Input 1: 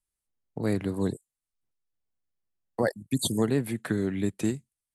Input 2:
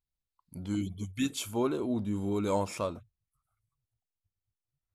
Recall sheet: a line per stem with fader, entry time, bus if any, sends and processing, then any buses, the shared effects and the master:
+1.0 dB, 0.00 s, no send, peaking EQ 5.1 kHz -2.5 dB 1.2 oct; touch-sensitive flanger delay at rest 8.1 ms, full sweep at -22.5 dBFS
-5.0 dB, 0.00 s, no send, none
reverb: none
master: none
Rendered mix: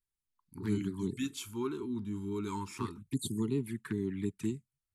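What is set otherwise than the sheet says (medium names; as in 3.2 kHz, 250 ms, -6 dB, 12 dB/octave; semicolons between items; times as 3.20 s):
stem 1 +1.0 dB -> -5.5 dB; master: extra Chebyshev band-stop 420–890 Hz, order 4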